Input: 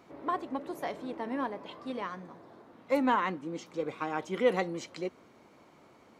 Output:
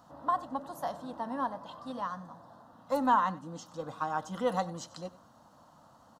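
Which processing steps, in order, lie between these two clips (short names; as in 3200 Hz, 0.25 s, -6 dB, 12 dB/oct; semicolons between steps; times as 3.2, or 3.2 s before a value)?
fixed phaser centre 940 Hz, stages 4; on a send: echo 94 ms -19 dB; on the sum: gain +3.5 dB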